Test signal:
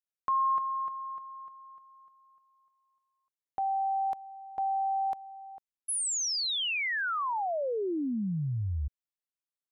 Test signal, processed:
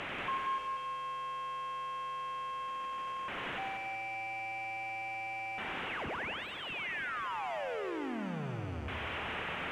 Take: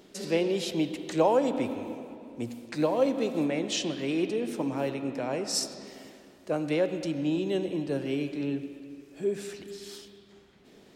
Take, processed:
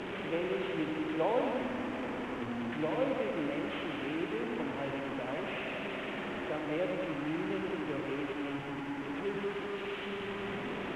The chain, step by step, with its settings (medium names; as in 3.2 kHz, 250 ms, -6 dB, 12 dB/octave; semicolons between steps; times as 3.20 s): one-bit delta coder 16 kbps, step -24.5 dBFS; bass shelf 75 Hz -8.5 dB; bit crusher 8-bit; distance through air 66 m; on a send: multi-head delay 93 ms, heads first and second, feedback 48%, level -7.5 dB; on the sum: trim -8 dB